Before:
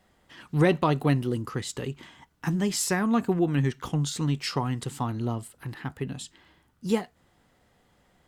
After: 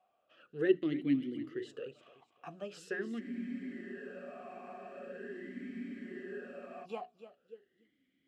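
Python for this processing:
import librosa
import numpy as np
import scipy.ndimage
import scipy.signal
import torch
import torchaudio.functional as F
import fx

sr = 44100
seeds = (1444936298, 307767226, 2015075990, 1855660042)

p1 = fx.hum_notches(x, sr, base_hz=60, count=7)
p2 = p1 + fx.echo_feedback(p1, sr, ms=295, feedback_pct=33, wet_db=-13, dry=0)
p3 = fx.spec_freeze(p2, sr, seeds[0], at_s=3.22, hold_s=3.62)
y = fx.vowel_sweep(p3, sr, vowels='a-i', hz=0.43)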